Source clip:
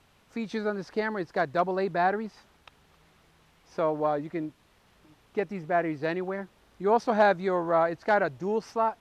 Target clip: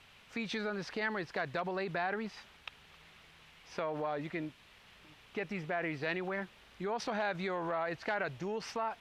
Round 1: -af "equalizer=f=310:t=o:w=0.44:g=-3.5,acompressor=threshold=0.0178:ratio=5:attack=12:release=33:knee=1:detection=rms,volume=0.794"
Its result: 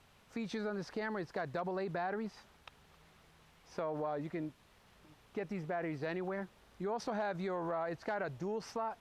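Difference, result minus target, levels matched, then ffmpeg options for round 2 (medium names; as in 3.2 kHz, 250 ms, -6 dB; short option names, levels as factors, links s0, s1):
2 kHz band -5.0 dB
-af "equalizer=f=310:t=o:w=0.44:g=-3.5,acompressor=threshold=0.0178:ratio=5:attack=12:release=33:knee=1:detection=rms,equalizer=f=2700:t=o:w=1.7:g=11,volume=0.794"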